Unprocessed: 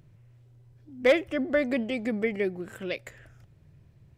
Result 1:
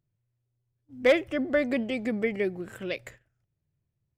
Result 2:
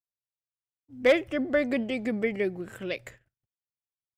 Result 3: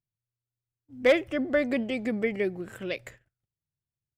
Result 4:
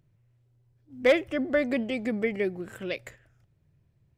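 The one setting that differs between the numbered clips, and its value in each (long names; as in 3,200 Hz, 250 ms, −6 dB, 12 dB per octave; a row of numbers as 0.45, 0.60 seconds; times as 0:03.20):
noise gate, range: −23, −59, −37, −10 decibels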